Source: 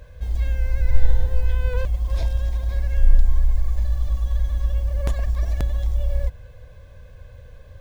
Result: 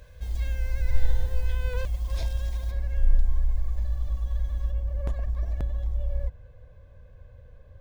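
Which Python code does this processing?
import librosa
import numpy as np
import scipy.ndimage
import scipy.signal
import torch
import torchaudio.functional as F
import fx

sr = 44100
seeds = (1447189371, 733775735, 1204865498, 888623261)

y = fx.high_shelf(x, sr, hz=2200.0, db=fx.steps((0.0, 7.0), (2.7, -4.0), (4.7, -11.5)))
y = y * 10.0 ** (-6.0 / 20.0)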